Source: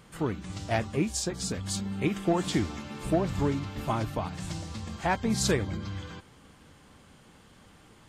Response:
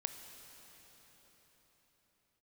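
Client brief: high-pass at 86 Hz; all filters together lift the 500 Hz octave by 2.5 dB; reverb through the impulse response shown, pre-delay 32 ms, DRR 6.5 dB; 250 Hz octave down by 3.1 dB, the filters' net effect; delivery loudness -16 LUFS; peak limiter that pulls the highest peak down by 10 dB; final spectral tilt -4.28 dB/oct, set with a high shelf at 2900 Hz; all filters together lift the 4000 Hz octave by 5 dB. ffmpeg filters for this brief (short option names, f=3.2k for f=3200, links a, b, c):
-filter_complex "[0:a]highpass=86,equalizer=f=250:t=o:g=-6.5,equalizer=f=500:t=o:g=5.5,highshelf=f=2.9k:g=-3.5,equalizer=f=4k:t=o:g=9,alimiter=limit=-21.5dB:level=0:latency=1,asplit=2[a][b];[1:a]atrim=start_sample=2205,adelay=32[c];[b][c]afir=irnorm=-1:irlink=0,volume=-6dB[d];[a][d]amix=inputs=2:normalize=0,volume=17dB"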